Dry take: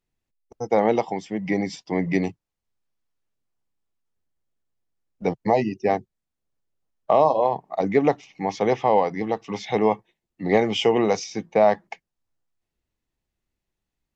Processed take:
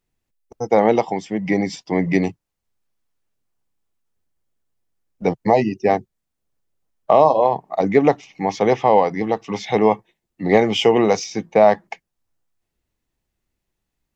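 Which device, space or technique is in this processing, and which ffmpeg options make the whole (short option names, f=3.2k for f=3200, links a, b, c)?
exciter from parts: -filter_complex "[0:a]asplit=2[a][b];[b]highpass=f=4.2k:p=1,asoftclip=type=tanh:threshold=-34.5dB,highpass=4k,volume=-12dB[c];[a][c]amix=inputs=2:normalize=0,volume=4.5dB"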